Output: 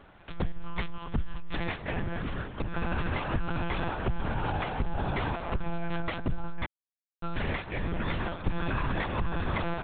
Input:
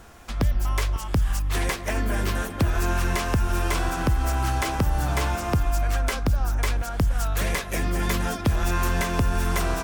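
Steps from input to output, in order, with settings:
0:02.06–0:02.75: downward compressor, threshold −22 dBFS, peak gain reduction 5.5 dB
0:06.65–0:07.23: silence
one-pitch LPC vocoder at 8 kHz 170 Hz
level −6.5 dB

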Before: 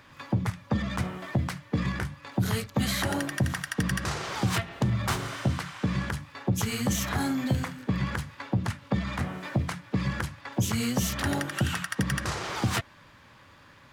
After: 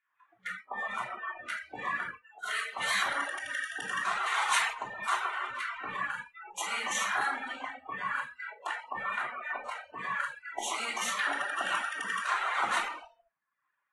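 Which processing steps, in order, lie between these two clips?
adaptive Wiener filter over 9 samples
auto-filter high-pass saw down 6.8 Hz 810–2,000 Hz
parametric band 5,000 Hz −12.5 dB 0.26 octaves
brickwall limiter −19.5 dBFS, peak gain reduction 8.5 dB
rectangular room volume 1,300 cubic metres, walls mixed, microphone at 3.2 metres
noise reduction from a noise print of the clip's start 29 dB
0:04.26–0:04.73: high-shelf EQ 3,300 Hz +9.5 dB
reverb reduction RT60 0.7 s
0:02.38–0:02.79: high-pass filter 540 Hz 12 dB per octave
level −3 dB
AAC 32 kbit/s 24,000 Hz

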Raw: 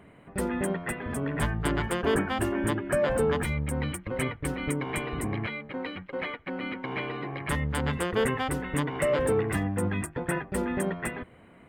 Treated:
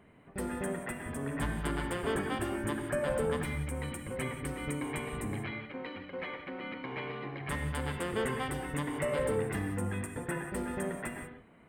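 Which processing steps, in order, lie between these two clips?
reverb whose tail is shaped and stops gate 210 ms flat, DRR 4.5 dB
level −7 dB

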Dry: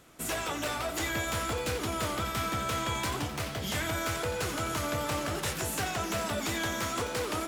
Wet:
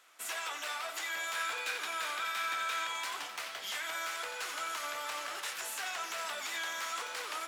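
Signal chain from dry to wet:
high-pass filter 1,100 Hz 12 dB per octave
high-shelf EQ 6,400 Hz −6.5 dB
brickwall limiter −28 dBFS, peak gain reduction 4.5 dB
0:01.35–0:02.87: hollow resonant body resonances 1,600/2,400/3,700 Hz, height 9 dB, ringing for 20 ms

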